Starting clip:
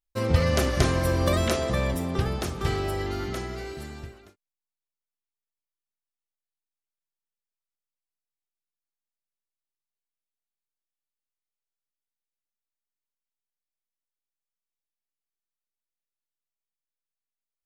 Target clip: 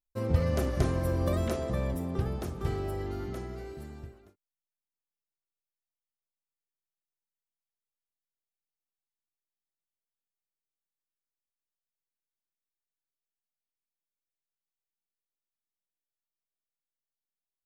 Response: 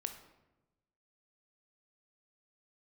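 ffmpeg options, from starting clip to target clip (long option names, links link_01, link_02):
-af "equalizer=frequency=3900:width=0.31:gain=-10.5,volume=-4dB"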